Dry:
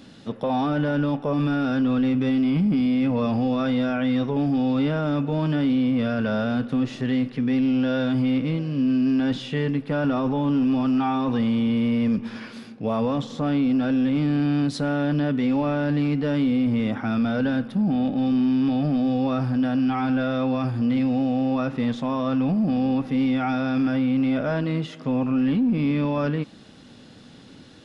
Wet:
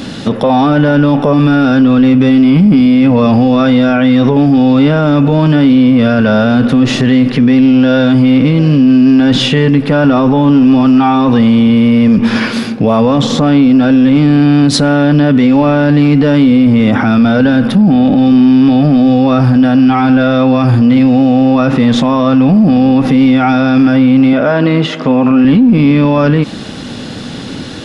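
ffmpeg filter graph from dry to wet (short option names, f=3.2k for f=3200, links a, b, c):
-filter_complex "[0:a]asettb=1/sr,asplit=3[a][b][c];[a]atrim=end=24.334[d];[b]atrim=start=24.33:end=25.45,asetpts=PTS-STARTPTS,afade=t=in:d=0.004:c=qsin,afade=t=out:st=1.116:d=0.004:c=qsin,highpass=f=300:p=1,aemphasis=mode=reproduction:type=50kf[e];[c]atrim=start=25.446[f];[d][e]acrossfade=d=0.004:c1=hsin:c2=qsin[g];[g][f]acrossfade=d=0.004:c1=qsin:c2=hsin,acontrast=52,alimiter=level_in=18.5dB:limit=-1dB:release=50:level=0:latency=1,volume=-1dB"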